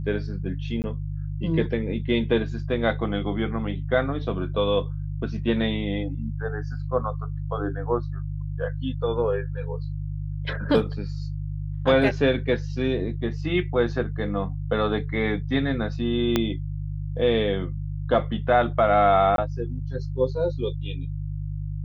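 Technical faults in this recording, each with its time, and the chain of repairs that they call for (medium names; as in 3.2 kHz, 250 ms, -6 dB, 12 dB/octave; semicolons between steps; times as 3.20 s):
hum 50 Hz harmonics 3 -30 dBFS
0.82–0.84 s: dropout 19 ms
16.36 s: pop -7 dBFS
19.36–19.38 s: dropout 22 ms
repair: de-click; de-hum 50 Hz, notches 3; interpolate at 0.82 s, 19 ms; interpolate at 19.36 s, 22 ms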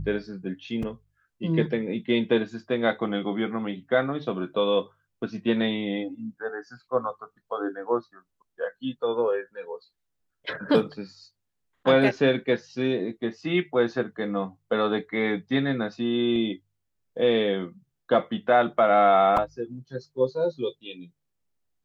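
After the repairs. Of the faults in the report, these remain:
16.36 s: pop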